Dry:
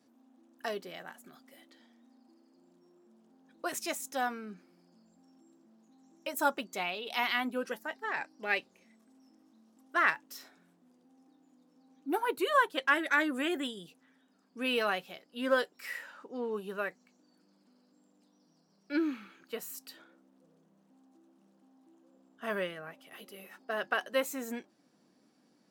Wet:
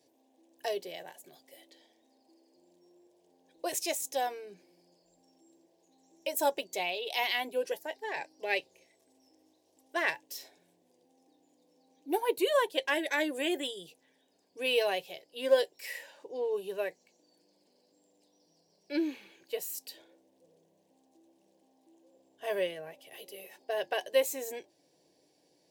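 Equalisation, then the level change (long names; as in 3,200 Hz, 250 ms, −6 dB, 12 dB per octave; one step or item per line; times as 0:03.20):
parametric band 750 Hz −2 dB 0.28 octaves
phaser with its sweep stopped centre 540 Hz, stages 4
+5.0 dB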